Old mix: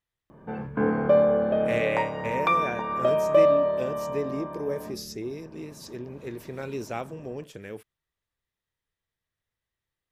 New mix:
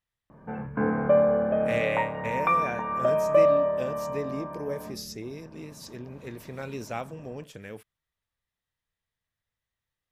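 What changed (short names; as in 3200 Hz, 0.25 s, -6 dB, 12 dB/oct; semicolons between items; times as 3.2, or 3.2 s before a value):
background: add LPF 2500 Hz 24 dB/oct; master: add bell 370 Hz -6 dB 0.58 oct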